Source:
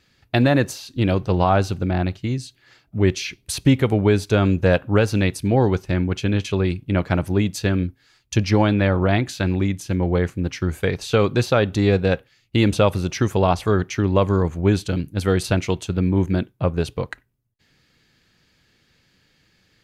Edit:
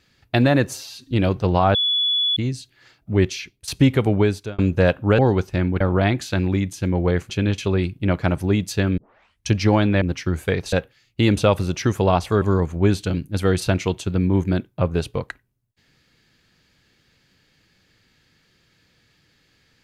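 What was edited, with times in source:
0.67–0.96 stretch 1.5×
1.6–2.22 bleep 3420 Hz -17 dBFS
3.08–3.53 fade out, to -14.5 dB
4.04–4.44 fade out
5.04–5.54 cut
7.84 tape start 0.52 s
8.88–10.37 move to 6.16
11.08–12.08 cut
13.77–14.24 cut

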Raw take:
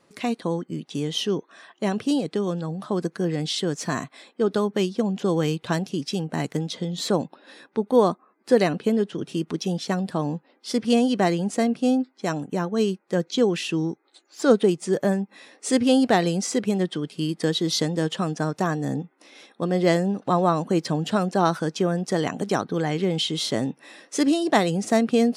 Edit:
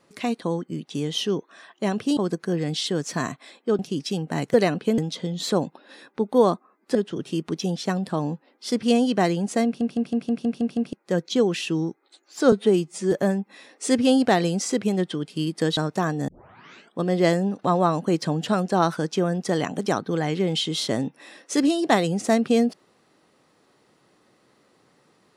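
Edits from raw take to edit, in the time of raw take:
2.17–2.89 cut
4.51–5.81 cut
8.53–8.97 move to 6.56
11.67 stutter in place 0.16 s, 8 plays
14.54–14.94 stretch 1.5×
17.59–18.4 cut
18.91 tape start 0.70 s

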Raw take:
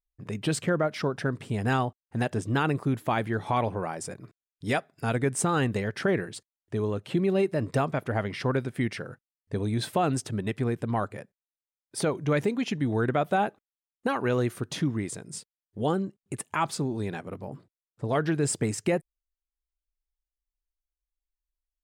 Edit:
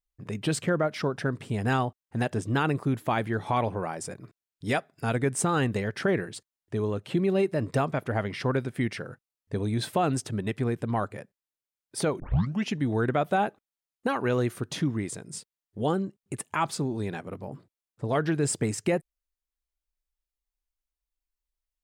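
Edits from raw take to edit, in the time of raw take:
12.2 tape start 0.48 s

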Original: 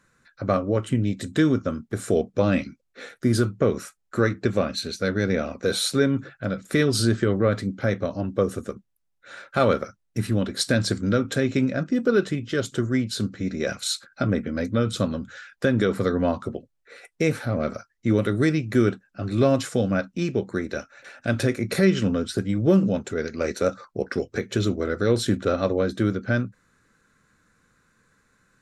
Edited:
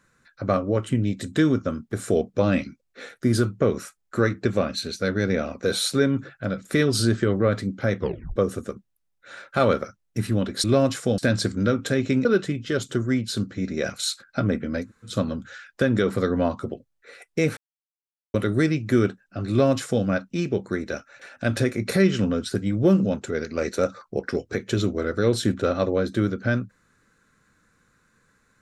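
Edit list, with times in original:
7.99 tape stop 0.37 s
11.71–12.08 cut
14.67–14.93 room tone, crossfade 0.16 s
17.4–18.17 mute
19.33–19.87 copy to 10.64

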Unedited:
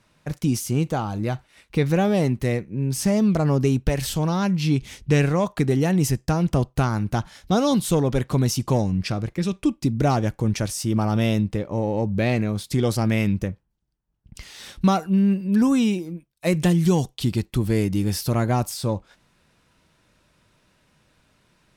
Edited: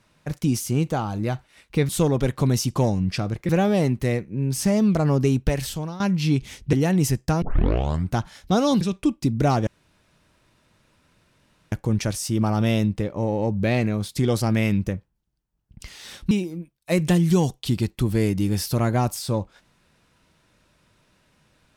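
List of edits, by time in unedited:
3.9–4.4 fade out, to -15.5 dB
5.13–5.73 cut
6.42 tape start 0.71 s
7.81–9.41 move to 1.89
10.27 insert room tone 2.05 s
14.86–15.86 cut

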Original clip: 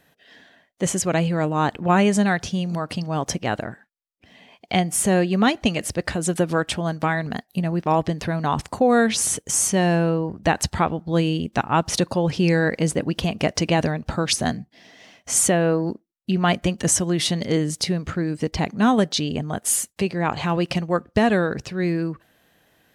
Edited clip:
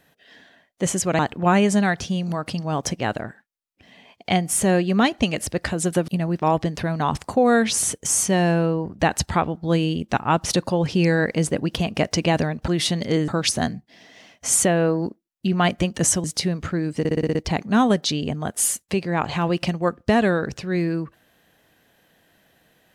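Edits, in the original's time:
1.19–1.62 cut
6.51–7.52 cut
17.08–17.68 move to 14.12
18.43 stutter 0.06 s, 7 plays

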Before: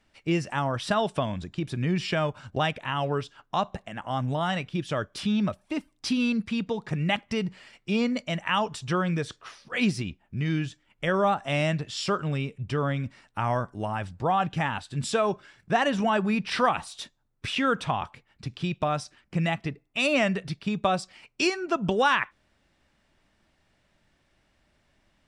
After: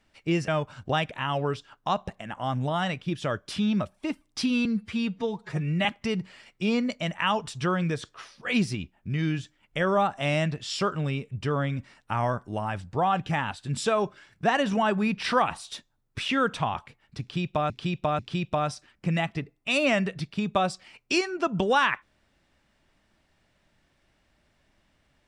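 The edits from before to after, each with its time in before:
0.48–2.15 cut
6.32–7.12 stretch 1.5×
18.48–18.97 loop, 3 plays

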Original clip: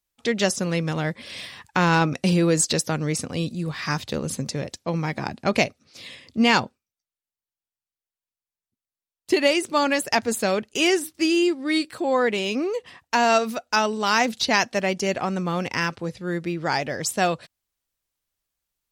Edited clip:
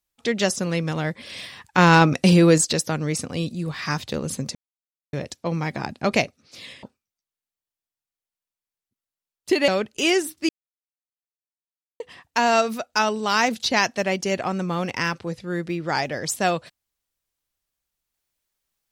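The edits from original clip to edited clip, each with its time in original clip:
1.78–2.58 gain +5 dB
4.55 insert silence 0.58 s
6.25–6.64 cut
9.49–10.45 cut
11.26–12.77 mute

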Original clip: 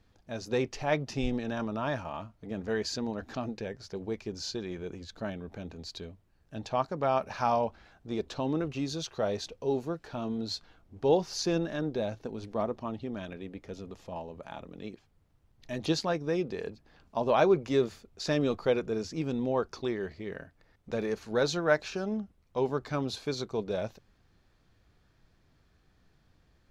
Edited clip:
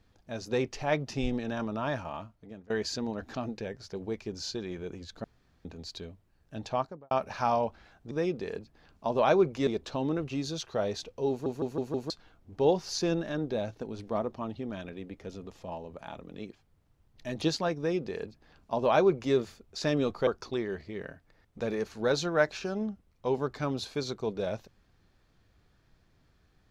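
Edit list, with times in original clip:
2.13–2.7 fade out, to -22.5 dB
5.24–5.65 room tone
6.71–7.11 studio fade out
9.74 stutter in place 0.16 s, 5 plays
16.22–17.78 copy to 8.11
18.71–19.58 cut

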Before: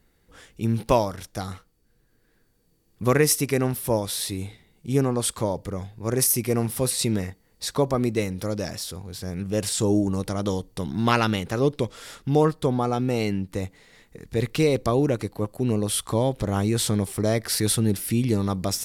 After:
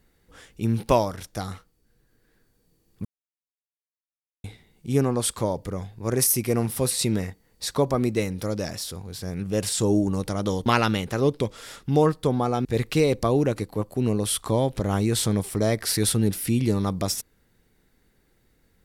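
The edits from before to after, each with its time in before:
3.05–4.44 mute
10.66–11.05 cut
13.04–14.28 cut

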